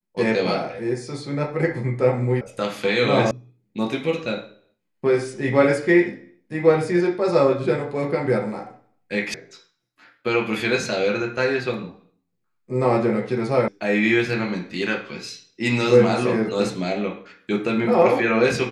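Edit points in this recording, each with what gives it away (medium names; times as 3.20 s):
2.41 s: sound stops dead
3.31 s: sound stops dead
9.34 s: sound stops dead
13.68 s: sound stops dead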